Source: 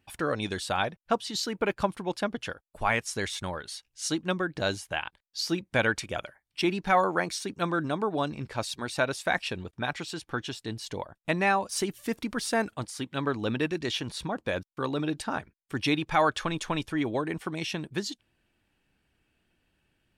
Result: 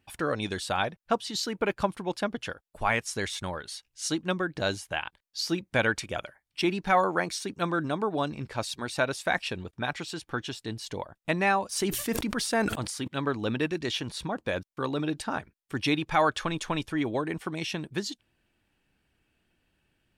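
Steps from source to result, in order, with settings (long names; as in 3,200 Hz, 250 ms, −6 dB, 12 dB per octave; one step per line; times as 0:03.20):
0:11.77–0:13.08: level that may fall only so fast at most 53 dB per second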